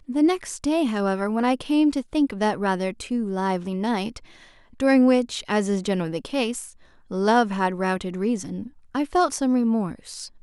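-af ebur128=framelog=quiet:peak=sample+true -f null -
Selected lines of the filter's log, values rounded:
Integrated loudness:
  I:         -23.4 LUFS
  Threshold: -33.8 LUFS
Loudness range:
  LRA:         2.1 LU
  Threshold: -43.9 LUFS
  LRA low:   -25.0 LUFS
  LRA high:  -22.8 LUFS
Sample peak:
  Peak:       -6.5 dBFS
True peak:
  Peak:       -6.5 dBFS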